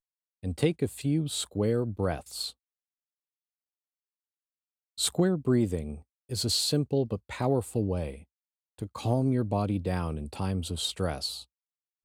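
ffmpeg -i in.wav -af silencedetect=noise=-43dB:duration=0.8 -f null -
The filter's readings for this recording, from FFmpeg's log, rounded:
silence_start: 2.51
silence_end: 4.98 | silence_duration: 2.47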